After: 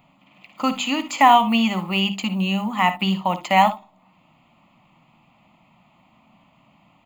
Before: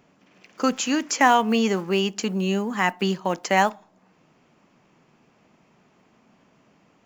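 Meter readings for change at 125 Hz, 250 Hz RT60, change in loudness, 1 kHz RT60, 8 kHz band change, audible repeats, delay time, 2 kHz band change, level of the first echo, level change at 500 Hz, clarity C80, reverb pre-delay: +3.5 dB, no reverb audible, +3.0 dB, no reverb audible, can't be measured, 1, 57 ms, +1.0 dB, −13.5 dB, −3.0 dB, no reverb audible, no reverb audible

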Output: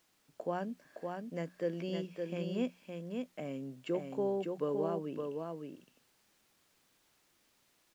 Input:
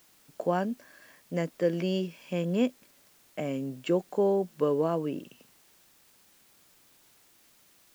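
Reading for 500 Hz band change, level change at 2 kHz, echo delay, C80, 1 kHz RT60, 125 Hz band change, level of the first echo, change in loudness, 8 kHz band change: −7.0 dB, −7.5 dB, 564 ms, no reverb audible, no reverb audible, −8.0 dB, −4.5 dB, −8.0 dB, can't be measured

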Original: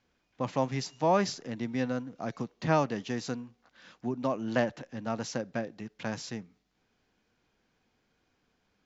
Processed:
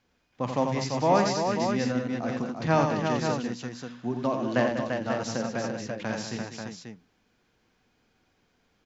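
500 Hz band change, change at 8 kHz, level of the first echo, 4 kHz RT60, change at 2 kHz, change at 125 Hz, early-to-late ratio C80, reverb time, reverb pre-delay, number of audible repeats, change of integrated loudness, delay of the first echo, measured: +5.0 dB, can't be measured, −12.5 dB, no reverb audible, +5.0 dB, +4.5 dB, no reverb audible, no reverb audible, no reverb audible, 5, +4.5 dB, 49 ms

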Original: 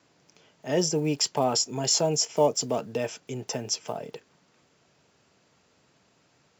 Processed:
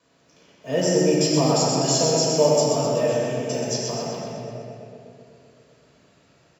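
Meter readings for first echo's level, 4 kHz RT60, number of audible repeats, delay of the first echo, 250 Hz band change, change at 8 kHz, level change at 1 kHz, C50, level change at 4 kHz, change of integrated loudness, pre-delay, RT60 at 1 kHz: −4.0 dB, 1.7 s, 1, 126 ms, +8.0 dB, +3.0 dB, +4.5 dB, −3.5 dB, +3.0 dB, +5.5 dB, 6 ms, 2.2 s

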